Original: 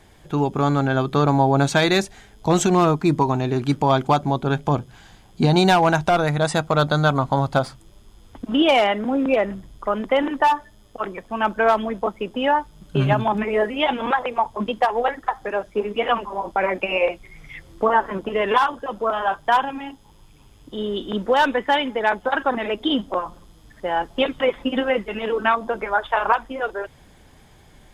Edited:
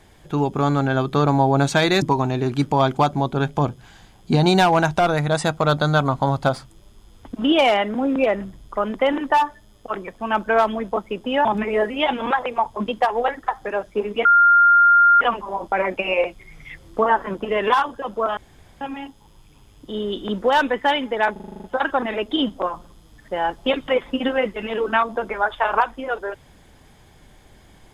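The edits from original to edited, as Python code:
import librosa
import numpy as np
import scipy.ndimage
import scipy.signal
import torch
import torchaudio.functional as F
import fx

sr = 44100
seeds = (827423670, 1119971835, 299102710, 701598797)

y = fx.edit(x, sr, fx.cut(start_s=2.02, length_s=1.1),
    fx.cut(start_s=12.55, length_s=0.7),
    fx.insert_tone(at_s=16.05, length_s=0.96, hz=1400.0, db=-9.5),
    fx.room_tone_fill(start_s=19.21, length_s=0.44),
    fx.stutter(start_s=22.16, slice_s=0.04, count=9), tone=tone)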